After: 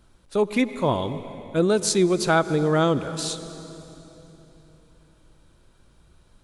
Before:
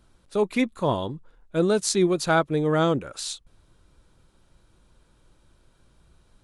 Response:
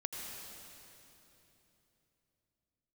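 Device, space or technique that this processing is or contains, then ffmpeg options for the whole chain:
ducked reverb: -filter_complex "[0:a]asplit=3[link_01][link_02][link_03];[1:a]atrim=start_sample=2205[link_04];[link_02][link_04]afir=irnorm=-1:irlink=0[link_05];[link_03]apad=whole_len=283893[link_06];[link_05][link_06]sidechaincompress=threshold=-24dB:ratio=8:attack=32:release=146,volume=-8dB[link_07];[link_01][link_07]amix=inputs=2:normalize=0"

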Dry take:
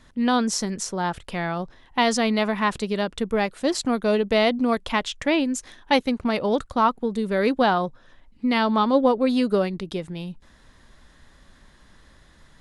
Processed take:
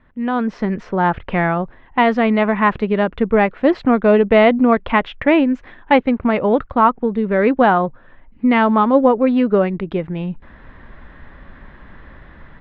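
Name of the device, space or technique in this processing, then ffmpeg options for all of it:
action camera in a waterproof case: -af "lowpass=frequency=2400:width=0.5412,lowpass=frequency=2400:width=1.3066,dynaudnorm=framelen=340:gausssize=3:maxgain=14dB,volume=-1dB" -ar 44100 -c:a aac -b:a 128k

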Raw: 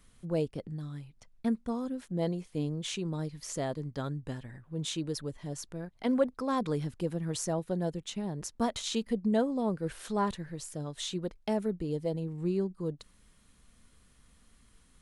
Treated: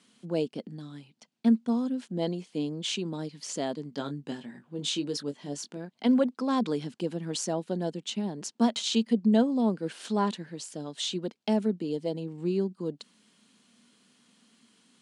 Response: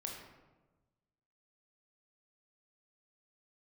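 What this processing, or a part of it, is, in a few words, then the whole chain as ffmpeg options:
television speaker: -filter_complex "[0:a]asettb=1/sr,asplit=3[link_01][link_02][link_03];[link_01]atrim=end=3.904[link_04];[link_02]atrim=start=3.9:end=5.77,asetpts=PTS-STARTPTS,afade=type=in:duration=0.004:curve=qsin,afade=type=out:start_time=1.866:duration=0.004:curve=qsin,asplit=2[link_05][link_06];[link_06]adelay=21,volume=-7.5dB[link_07];[link_05][link_07]amix=inputs=2:normalize=0,atrim=end_sample=82467[link_08];[link_03]atrim=start=5.766[link_09];[link_04][link_08]acrossfade=duration=0.004:curve1=hsin:curve2=qsin[link_10];[link_10][link_09]acrossfade=duration=0.004:curve1=qsin:curve2=hsin,highpass=frequency=190:width=0.5412,highpass=frequency=190:width=1.3066,equalizer=frequency=230:width_type=q:width=4:gain=6,equalizer=frequency=540:width_type=q:width=4:gain=-3,equalizer=frequency=1200:width_type=q:width=4:gain=-4,equalizer=frequency=1900:width_type=q:width=4:gain=-3,equalizer=frequency=3000:width_type=q:width=4:gain=5,equalizer=frequency=4500:width_type=q:width=4:gain=4,lowpass=frequency=8900:width=0.5412,lowpass=frequency=8900:width=1.3066,volume=3dB"

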